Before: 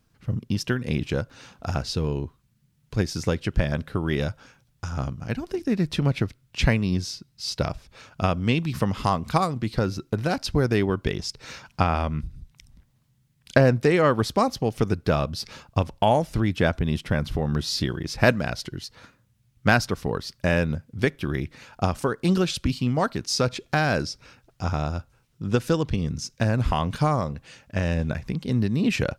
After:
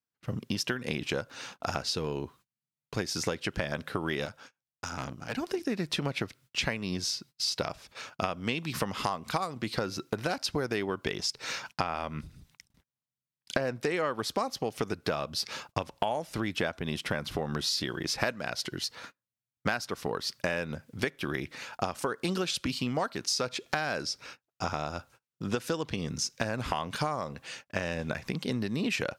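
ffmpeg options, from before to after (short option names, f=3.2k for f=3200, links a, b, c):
-filter_complex "[0:a]asettb=1/sr,asplit=3[a][b][c];[a]atrim=end=4.254[d];[b]atrim=start=4.25:end=5.35,asetpts=PTS-STARTPTS,afade=t=in:d=0.004:c=qsin,afade=t=out:st=1.096:d=0.004:c=qsin,aeval=exprs='(tanh(28.2*val(0)+0.75)-tanh(0.75))/28.2':c=same[e];[c]atrim=start=5.346[f];[d][e]acrossfade=d=0.004:c1=hsin:c2=qsin[g];[g][f]acrossfade=d=0.004:c1=qsin:c2=hsin,agate=range=-29dB:threshold=-49dB:ratio=16:detection=peak,highpass=f=510:p=1,acompressor=threshold=-33dB:ratio=6,volume=5.5dB"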